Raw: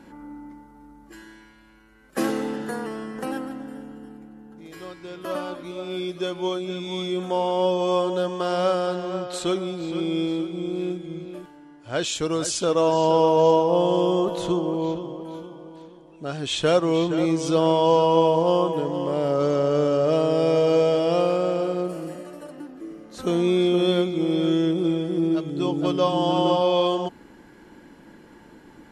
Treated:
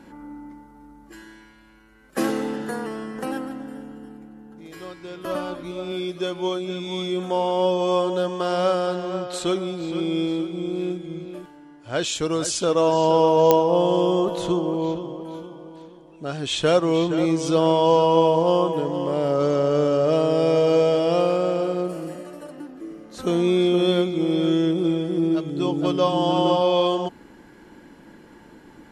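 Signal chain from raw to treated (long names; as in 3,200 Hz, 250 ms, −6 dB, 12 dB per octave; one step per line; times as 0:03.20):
0:05.25–0:05.92: low-shelf EQ 110 Hz +11 dB
digital clicks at 0:13.51, −4 dBFS
level +1 dB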